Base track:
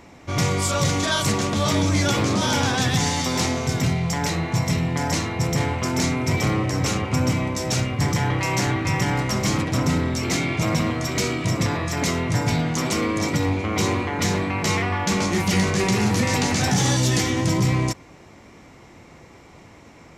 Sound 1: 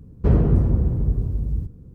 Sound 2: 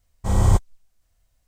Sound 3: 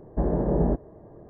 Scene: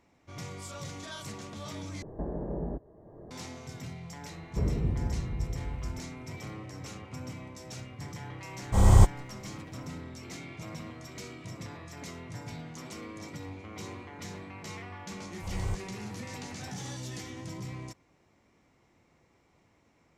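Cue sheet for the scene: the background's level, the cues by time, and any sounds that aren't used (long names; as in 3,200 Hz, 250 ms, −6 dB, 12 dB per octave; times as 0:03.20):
base track −20 dB
0:02.02: overwrite with 3 −11.5 dB + multiband upward and downward compressor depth 70%
0:04.32: mix in 1 −12.5 dB
0:08.48: mix in 2 −1 dB
0:15.18: mix in 2 −17.5 dB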